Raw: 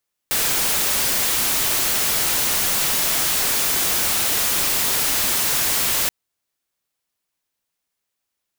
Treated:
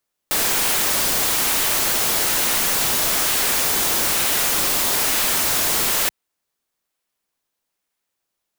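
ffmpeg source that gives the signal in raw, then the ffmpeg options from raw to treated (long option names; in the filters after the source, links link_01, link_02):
-f lavfi -i "anoisesrc=color=white:amplitude=0.173:duration=5.78:sample_rate=44100:seed=1"
-filter_complex "[0:a]equalizer=frequency=85:width_type=o:width=1.4:gain=-13,asplit=2[link_01][link_02];[link_02]acrusher=samples=11:mix=1:aa=0.000001:lfo=1:lforange=11:lforate=1.1,volume=-11.5dB[link_03];[link_01][link_03]amix=inputs=2:normalize=0"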